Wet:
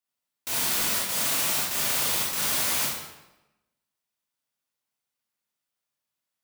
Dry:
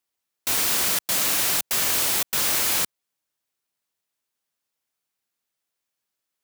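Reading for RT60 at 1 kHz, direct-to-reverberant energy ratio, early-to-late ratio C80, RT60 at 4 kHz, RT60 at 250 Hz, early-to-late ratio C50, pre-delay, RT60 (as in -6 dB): 0.95 s, -5.0 dB, 3.5 dB, 0.80 s, 1.0 s, 0.0 dB, 25 ms, 1.0 s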